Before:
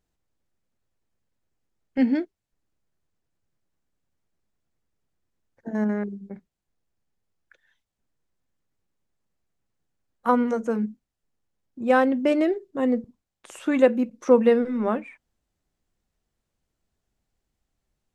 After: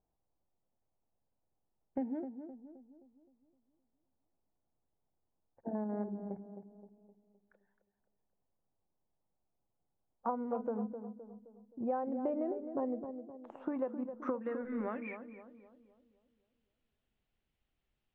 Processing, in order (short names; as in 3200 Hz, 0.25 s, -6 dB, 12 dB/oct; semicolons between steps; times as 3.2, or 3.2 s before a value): compressor 20:1, threshold -28 dBFS, peak gain reduction 18.5 dB; low-pass sweep 820 Hz -> 3000 Hz, 13.56–15.52; on a send: tape echo 0.26 s, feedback 53%, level -7 dB, low-pass 1000 Hz; on the sum: gain -6.5 dB